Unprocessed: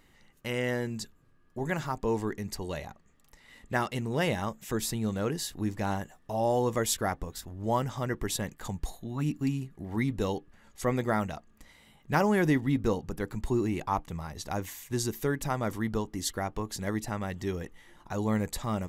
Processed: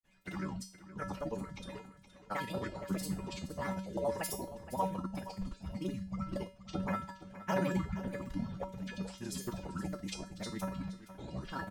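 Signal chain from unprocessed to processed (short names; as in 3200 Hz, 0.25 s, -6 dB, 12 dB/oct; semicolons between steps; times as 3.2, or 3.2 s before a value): trilling pitch shifter -10 st, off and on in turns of 0.464 s; notches 60/120/180/240/300/360 Hz; grains, pitch spread up and down by 7 st; time stretch by phase-locked vocoder 0.62×; harmonic-percussive split harmonic -5 dB; resonator 190 Hz, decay 0.38 s, harmonics odd, mix 90%; feedback echo 0.47 s, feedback 28%, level -14.5 dB; gain +11 dB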